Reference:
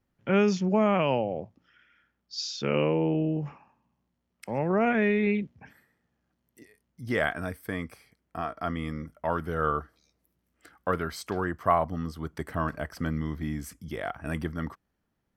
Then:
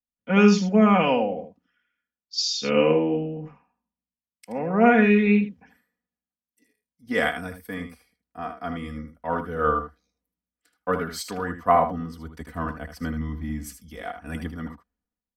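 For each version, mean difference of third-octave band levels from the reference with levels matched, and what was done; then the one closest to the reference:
5.0 dB: comb filter 4.1 ms, depth 81%
single-tap delay 78 ms −8 dB
multiband upward and downward expander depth 70%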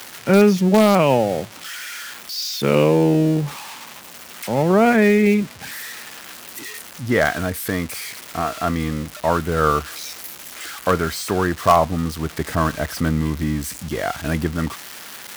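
8.0 dB: spike at every zero crossing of −23.5 dBFS
low-pass filter 2,400 Hz 6 dB per octave
in parallel at −11 dB: wrap-around overflow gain 13.5 dB
on the sum: level +8 dB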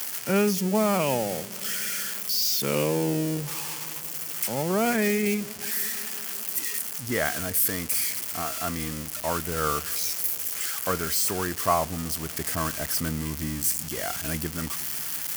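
13.5 dB: spike at every zero crossing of −18.5 dBFS
parametric band 3,800 Hz −6.5 dB 0.21 octaves
delay with a low-pass on its return 180 ms, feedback 81%, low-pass 460 Hz, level −20.5 dB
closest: first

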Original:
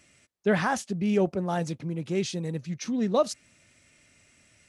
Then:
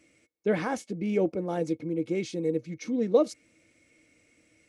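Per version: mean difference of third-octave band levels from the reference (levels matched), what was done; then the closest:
4.5 dB: hollow resonant body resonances 320/470/2,200 Hz, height 18 dB, ringing for 70 ms
level −7.5 dB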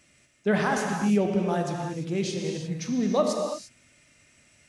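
6.5 dB: reverb whose tail is shaped and stops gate 370 ms flat, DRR 1.5 dB
level −1 dB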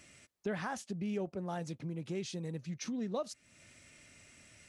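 2.0 dB: downward compressor 2.5 to 1, threshold −43 dBFS, peak gain reduction 16.5 dB
level +1.5 dB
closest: third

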